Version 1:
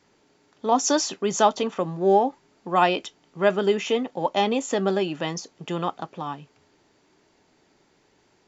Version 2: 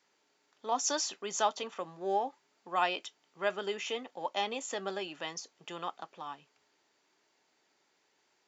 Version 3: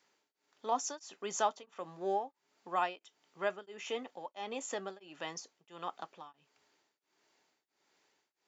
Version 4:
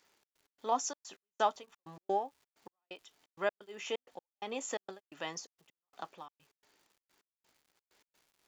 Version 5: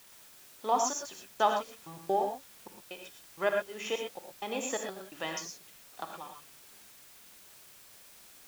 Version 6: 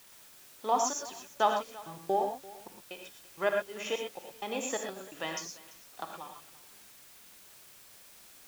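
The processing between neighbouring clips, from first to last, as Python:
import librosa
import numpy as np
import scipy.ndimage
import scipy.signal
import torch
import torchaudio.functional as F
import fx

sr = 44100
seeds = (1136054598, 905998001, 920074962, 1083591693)

y1 = fx.highpass(x, sr, hz=1000.0, slope=6)
y1 = y1 * librosa.db_to_amplitude(-6.5)
y2 = fx.dynamic_eq(y1, sr, hz=3900.0, q=0.8, threshold_db=-46.0, ratio=4.0, max_db=-5)
y2 = y2 * np.abs(np.cos(np.pi * 1.5 * np.arange(len(y2)) / sr))
y3 = fx.dmg_crackle(y2, sr, seeds[0], per_s=330.0, level_db=-59.0)
y3 = fx.step_gate(y3, sr, bpm=129, pattern='xx.x.xxx.x..x', floor_db=-60.0, edge_ms=4.5)
y3 = y3 * librosa.db_to_amplitude(1.5)
y4 = fx.quant_dither(y3, sr, seeds[1], bits=10, dither='triangular')
y4 = fx.rev_gated(y4, sr, seeds[2], gate_ms=140, shape='rising', drr_db=2.5)
y4 = y4 * librosa.db_to_amplitude(3.0)
y5 = y4 + 10.0 ** (-20.5 / 20.0) * np.pad(y4, (int(340 * sr / 1000.0), 0))[:len(y4)]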